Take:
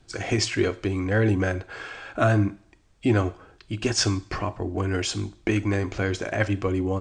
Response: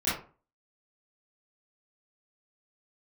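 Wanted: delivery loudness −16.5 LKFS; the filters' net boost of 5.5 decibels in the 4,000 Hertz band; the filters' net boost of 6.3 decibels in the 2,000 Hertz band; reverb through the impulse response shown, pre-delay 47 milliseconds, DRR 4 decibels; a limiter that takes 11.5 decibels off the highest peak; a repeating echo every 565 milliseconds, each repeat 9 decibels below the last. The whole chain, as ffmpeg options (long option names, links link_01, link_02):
-filter_complex "[0:a]equalizer=frequency=2000:width_type=o:gain=7,equalizer=frequency=4000:width_type=o:gain=6,alimiter=limit=-16dB:level=0:latency=1,aecho=1:1:565|1130|1695|2260:0.355|0.124|0.0435|0.0152,asplit=2[link_01][link_02];[1:a]atrim=start_sample=2205,adelay=47[link_03];[link_02][link_03]afir=irnorm=-1:irlink=0,volume=-14.5dB[link_04];[link_01][link_04]amix=inputs=2:normalize=0,volume=9dB"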